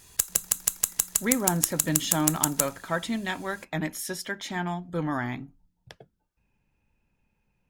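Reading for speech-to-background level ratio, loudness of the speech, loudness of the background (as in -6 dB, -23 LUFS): -5.0 dB, -30.5 LUFS, -25.5 LUFS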